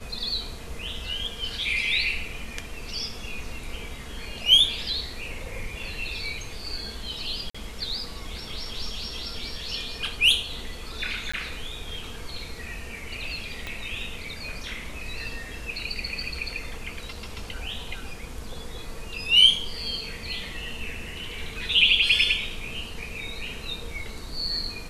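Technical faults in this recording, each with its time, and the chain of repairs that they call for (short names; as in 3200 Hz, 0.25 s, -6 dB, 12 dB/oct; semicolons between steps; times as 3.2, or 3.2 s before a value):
7.5–7.54 gap 45 ms
11.32–11.34 gap 15 ms
13.67 pop -19 dBFS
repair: de-click; interpolate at 7.5, 45 ms; interpolate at 11.32, 15 ms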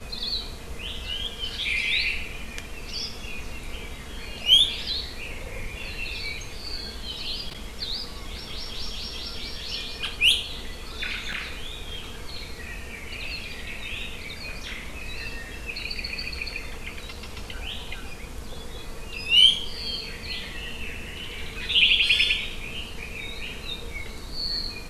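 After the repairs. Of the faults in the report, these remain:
13.67 pop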